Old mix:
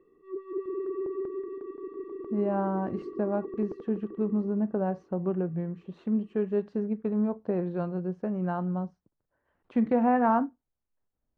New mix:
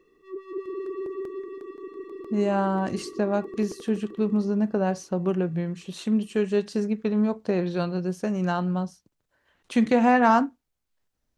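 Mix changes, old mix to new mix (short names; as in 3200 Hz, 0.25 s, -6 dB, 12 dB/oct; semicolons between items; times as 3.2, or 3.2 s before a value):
speech +4.0 dB; master: remove LPF 1200 Hz 12 dB/oct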